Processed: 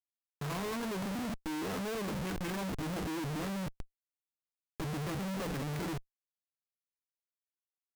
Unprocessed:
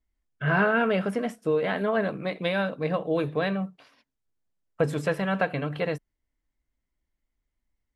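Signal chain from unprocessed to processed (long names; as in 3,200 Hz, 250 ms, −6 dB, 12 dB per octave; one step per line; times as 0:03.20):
formants moved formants −6 semitones
treble cut that deepens with the level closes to 1,200 Hz, closed at −22 dBFS
comparator with hysteresis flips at −41 dBFS
level −7 dB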